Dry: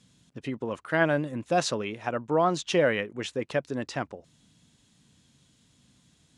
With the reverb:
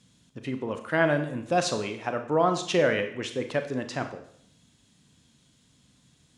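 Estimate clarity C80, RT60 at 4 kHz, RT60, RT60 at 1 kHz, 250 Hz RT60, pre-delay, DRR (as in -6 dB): 13.0 dB, 0.65 s, 0.65 s, 0.65 s, 0.65 s, 30 ms, 7.0 dB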